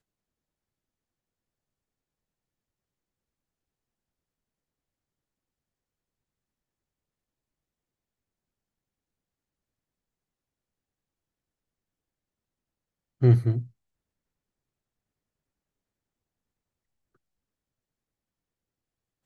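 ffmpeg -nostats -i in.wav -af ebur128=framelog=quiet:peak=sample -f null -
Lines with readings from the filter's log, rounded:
Integrated loudness:
  I:         -23.4 LUFS
  Threshold: -33.9 LUFS
Loudness range:
  LRA:         3.8 LU
  Threshold: -50.2 LUFS
  LRA low:   -33.4 LUFS
  LRA high:  -29.7 LUFS
Sample peak:
  Peak:       -9.0 dBFS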